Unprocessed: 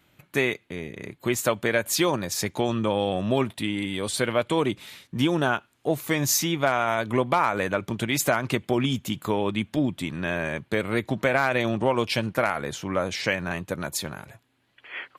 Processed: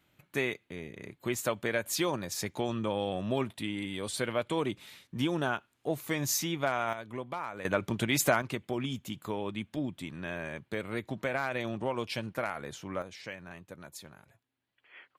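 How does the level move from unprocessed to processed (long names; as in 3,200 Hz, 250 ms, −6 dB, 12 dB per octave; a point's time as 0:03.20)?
−7.5 dB
from 0:06.93 −15.5 dB
from 0:07.65 −3 dB
from 0:08.42 −10 dB
from 0:13.02 −17 dB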